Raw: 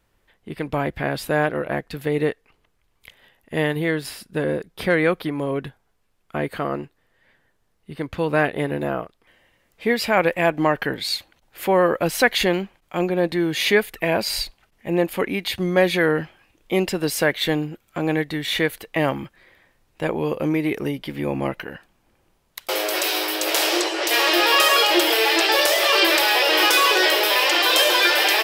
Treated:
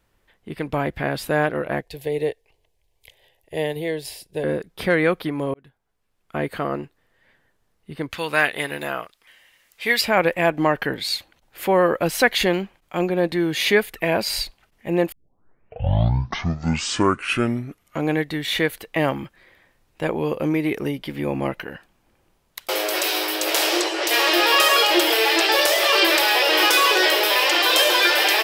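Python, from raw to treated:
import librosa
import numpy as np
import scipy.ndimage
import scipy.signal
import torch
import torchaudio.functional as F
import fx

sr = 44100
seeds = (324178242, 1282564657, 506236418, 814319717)

y = fx.fixed_phaser(x, sr, hz=550.0, stages=4, at=(1.82, 4.44))
y = fx.tilt_shelf(y, sr, db=-10.0, hz=970.0, at=(8.1, 10.0), fade=0.02)
y = fx.edit(y, sr, fx.fade_in_span(start_s=5.54, length_s=0.87),
    fx.tape_start(start_s=15.12, length_s=3.04), tone=tone)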